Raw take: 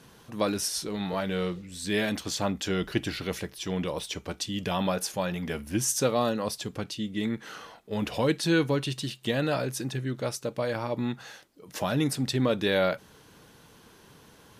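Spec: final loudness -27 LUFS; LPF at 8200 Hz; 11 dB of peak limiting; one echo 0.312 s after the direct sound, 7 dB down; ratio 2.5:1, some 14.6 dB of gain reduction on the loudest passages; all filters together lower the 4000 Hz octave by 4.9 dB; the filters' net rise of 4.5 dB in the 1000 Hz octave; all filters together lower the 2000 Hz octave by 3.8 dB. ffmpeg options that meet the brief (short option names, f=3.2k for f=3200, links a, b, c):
-af "lowpass=8.2k,equalizer=f=1k:t=o:g=8,equalizer=f=2k:t=o:g=-8,equalizer=f=4k:t=o:g=-4,acompressor=threshold=-42dB:ratio=2.5,alimiter=level_in=10dB:limit=-24dB:level=0:latency=1,volume=-10dB,aecho=1:1:312:0.447,volume=17dB"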